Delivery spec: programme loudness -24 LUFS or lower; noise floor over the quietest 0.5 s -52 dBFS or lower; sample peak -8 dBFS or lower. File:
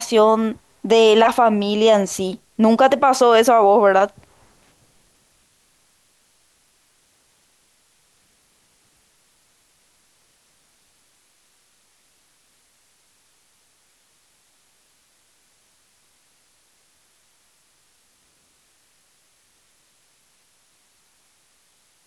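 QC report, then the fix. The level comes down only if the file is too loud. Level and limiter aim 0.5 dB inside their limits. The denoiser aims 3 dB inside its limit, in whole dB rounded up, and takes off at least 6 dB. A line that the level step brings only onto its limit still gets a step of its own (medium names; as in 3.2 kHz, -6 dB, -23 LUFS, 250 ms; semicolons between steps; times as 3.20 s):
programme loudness -15.5 LUFS: fail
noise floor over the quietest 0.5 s -61 dBFS: pass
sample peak -4.5 dBFS: fail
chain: trim -9 dB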